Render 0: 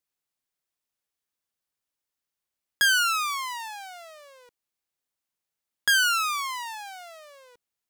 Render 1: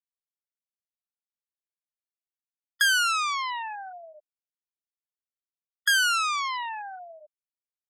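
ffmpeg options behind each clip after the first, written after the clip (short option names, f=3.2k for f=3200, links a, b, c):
-filter_complex "[0:a]afftfilt=real='re*gte(hypot(re,im),0.0447)':imag='im*gte(hypot(re,im),0.0447)':win_size=1024:overlap=0.75,highpass=59,asplit=2[a][b];[b]acompressor=threshold=-30dB:ratio=6,volume=2dB[c];[a][c]amix=inputs=2:normalize=0,volume=-3.5dB"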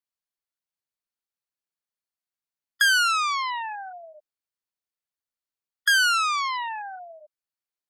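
-filter_complex "[0:a]equalizer=f=4.4k:w=5.6:g=4.5,acrossover=split=1700|3000|7700[a][b][c][d];[a]crystalizer=i=6.5:c=0[e];[e][b][c][d]amix=inputs=4:normalize=0"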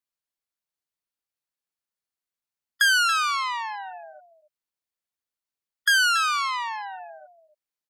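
-af "aecho=1:1:280:0.211"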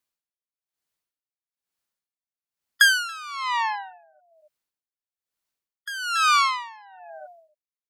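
-af "aeval=exprs='val(0)*pow(10,-21*(0.5-0.5*cos(2*PI*1.1*n/s))/20)':c=same,volume=7dB"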